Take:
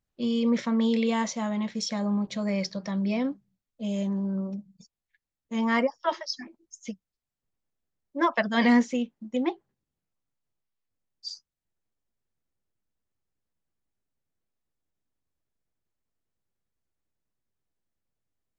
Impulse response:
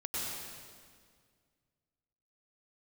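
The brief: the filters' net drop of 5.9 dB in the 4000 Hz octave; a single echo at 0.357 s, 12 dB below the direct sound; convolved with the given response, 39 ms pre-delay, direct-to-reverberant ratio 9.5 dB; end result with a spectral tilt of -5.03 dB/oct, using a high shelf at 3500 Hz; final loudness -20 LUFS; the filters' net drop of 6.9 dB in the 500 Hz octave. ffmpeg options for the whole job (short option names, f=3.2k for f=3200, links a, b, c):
-filter_complex "[0:a]equalizer=f=500:t=o:g=-8.5,highshelf=f=3.5k:g=-3.5,equalizer=f=4k:t=o:g=-5.5,aecho=1:1:357:0.251,asplit=2[a][b];[1:a]atrim=start_sample=2205,adelay=39[c];[b][c]afir=irnorm=-1:irlink=0,volume=-13.5dB[d];[a][d]amix=inputs=2:normalize=0,volume=9dB"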